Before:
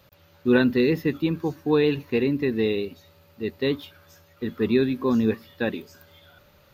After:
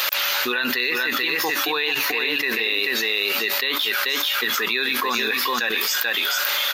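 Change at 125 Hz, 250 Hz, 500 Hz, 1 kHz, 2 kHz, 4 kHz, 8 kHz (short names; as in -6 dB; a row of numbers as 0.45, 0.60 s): under -15 dB, -10.5 dB, -5.5 dB, +11.5 dB, +13.5 dB, +18.0 dB, n/a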